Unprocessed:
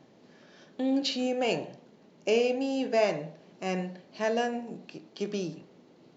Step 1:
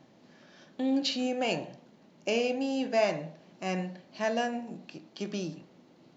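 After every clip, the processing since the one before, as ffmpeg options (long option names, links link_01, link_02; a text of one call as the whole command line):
ffmpeg -i in.wav -af "equalizer=frequency=430:width=3.9:gain=-7" out.wav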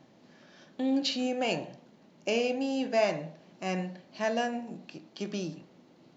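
ffmpeg -i in.wav -af anull out.wav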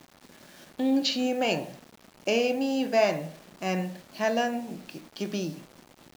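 ffmpeg -i in.wav -af "acrusher=bits=8:mix=0:aa=0.000001,volume=3.5dB" out.wav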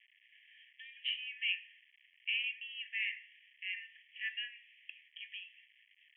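ffmpeg -i in.wav -af "asuperpass=centerf=2400:order=20:qfactor=1.6,volume=-2dB" out.wav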